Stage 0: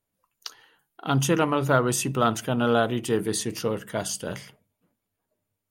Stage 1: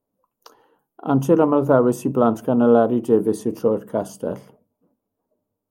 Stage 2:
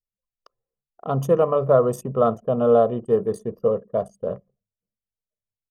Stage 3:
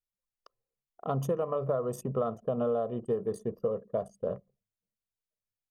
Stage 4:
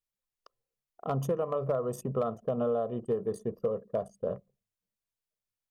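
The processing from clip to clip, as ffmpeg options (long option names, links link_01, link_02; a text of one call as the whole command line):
ffmpeg -i in.wav -af "equalizer=frequency=250:width_type=o:width=1:gain=10,equalizer=frequency=500:width_type=o:width=1:gain=9,equalizer=frequency=1000:width_type=o:width=1:gain=7,equalizer=frequency=2000:width_type=o:width=1:gain=-11,equalizer=frequency=4000:width_type=o:width=1:gain=-10,equalizer=frequency=8000:width_type=o:width=1:gain=-7,volume=-2.5dB" out.wav
ffmpeg -i in.wav -af "aecho=1:1:1.7:0.82,anlmdn=15.8,volume=-4dB" out.wav
ffmpeg -i in.wav -af "acompressor=threshold=-22dB:ratio=10,volume=-4dB" out.wav
ffmpeg -i in.wav -af "volume=20.5dB,asoftclip=hard,volume=-20.5dB" out.wav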